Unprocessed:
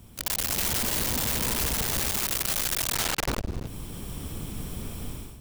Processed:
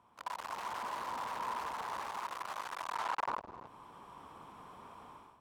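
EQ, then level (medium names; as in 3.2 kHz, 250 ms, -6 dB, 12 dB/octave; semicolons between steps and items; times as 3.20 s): band-pass filter 1 kHz, Q 4.6; +4.5 dB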